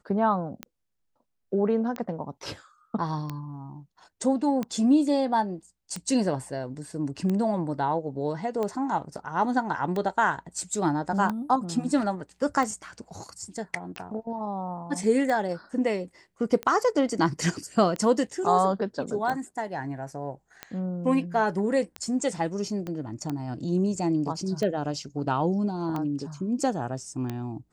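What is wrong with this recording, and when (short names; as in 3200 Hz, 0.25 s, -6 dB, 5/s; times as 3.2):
tick 45 rpm -18 dBFS
22.87 pop -22 dBFS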